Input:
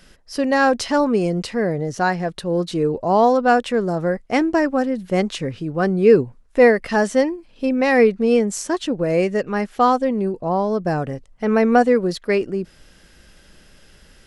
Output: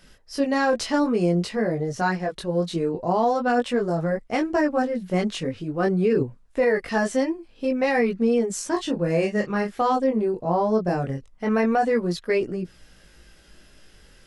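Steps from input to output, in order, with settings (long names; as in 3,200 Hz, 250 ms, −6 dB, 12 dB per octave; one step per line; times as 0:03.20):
0:08.71–0:09.79: double-tracking delay 29 ms −6 dB
multi-voice chorus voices 2, 0.24 Hz, delay 20 ms, depth 3.2 ms
brickwall limiter −12.5 dBFS, peak gain reduction 8.5 dB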